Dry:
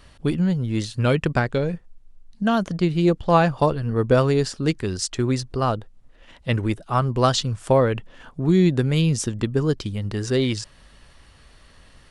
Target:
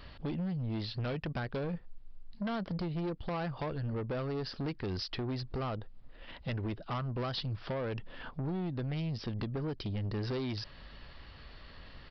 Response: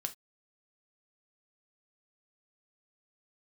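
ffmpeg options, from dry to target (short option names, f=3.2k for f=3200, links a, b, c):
-af "acompressor=threshold=-26dB:ratio=16,aresample=11025,asoftclip=type=tanh:threshold=-31.5dB,aresample=44100"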